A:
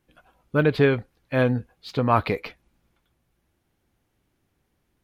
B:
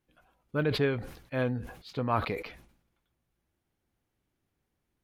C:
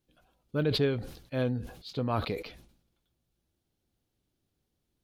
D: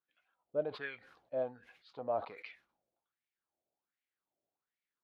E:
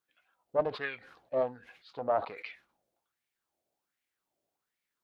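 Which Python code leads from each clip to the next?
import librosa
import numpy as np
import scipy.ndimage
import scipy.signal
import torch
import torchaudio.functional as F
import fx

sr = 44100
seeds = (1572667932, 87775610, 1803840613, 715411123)

y1 = fx.sustainer(x, sr, db_per_s=88.0)
y1 = y1 * 10.0 ** (-9.0 / 20.0)
y2 = fx.graphic_eq(y1, sr, hz=(1000, 2000, 4000), db=(-5, -7, 5))
y2 = y2 * 10.0 ** (1.0 / 20.0)
y3 = fx.wah_lfo(y2, sr, hz=1.3, low_hz=600.0, high_hz=2200.0, q=4.6)
y3 = y3 * 10.0 ** (3.5 / 20.0)
y4 = fx.doppler_dist(y3, sr, depth_ms=0.25)
y4 = y4 * 10.0 ** (6.0 / 20.0)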